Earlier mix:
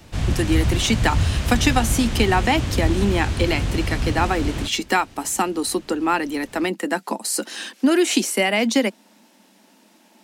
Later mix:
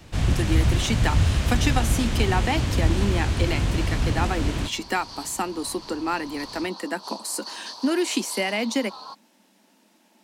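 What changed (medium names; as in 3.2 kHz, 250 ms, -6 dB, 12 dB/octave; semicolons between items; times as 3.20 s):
speech -6.0 dB; second sound: unmuted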